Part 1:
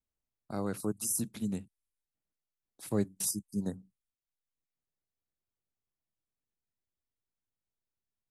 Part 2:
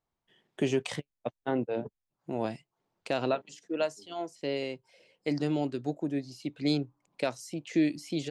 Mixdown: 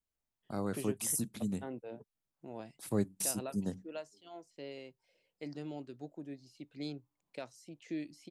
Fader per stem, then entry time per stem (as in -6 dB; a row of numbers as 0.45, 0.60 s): -1.5, -13.5 dB; 0.00, 0.15 s